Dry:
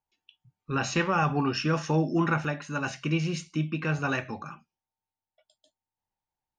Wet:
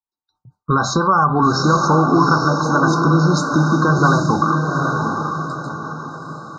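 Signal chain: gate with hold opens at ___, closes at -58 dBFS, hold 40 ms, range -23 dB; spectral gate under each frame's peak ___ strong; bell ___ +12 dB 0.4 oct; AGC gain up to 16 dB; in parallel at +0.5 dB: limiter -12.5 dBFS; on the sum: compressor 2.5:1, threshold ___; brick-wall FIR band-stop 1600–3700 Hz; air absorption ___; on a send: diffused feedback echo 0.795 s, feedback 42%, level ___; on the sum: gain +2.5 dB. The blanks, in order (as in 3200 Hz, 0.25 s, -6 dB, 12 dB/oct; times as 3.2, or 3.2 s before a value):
-56 dBFS, -40 dB, 1100 Hz, -17 dBFS, 52 m, -3.5 dB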